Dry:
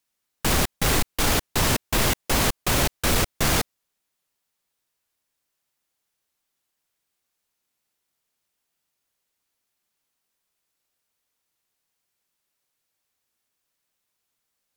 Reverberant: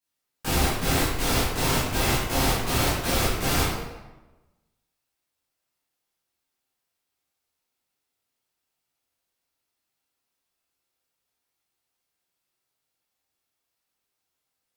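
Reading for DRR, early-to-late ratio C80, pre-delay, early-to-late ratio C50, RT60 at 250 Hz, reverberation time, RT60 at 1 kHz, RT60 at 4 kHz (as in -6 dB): -11.5 dB, 2.5 dB, 9 ms, -1.0 dB, 1.2 s, 1.1 s, 1.1 s, 0.80 s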